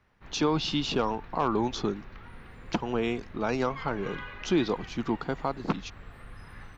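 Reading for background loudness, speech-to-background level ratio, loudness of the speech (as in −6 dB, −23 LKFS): −46.5 LKFS, 16.0 dB, −30.5 LKFS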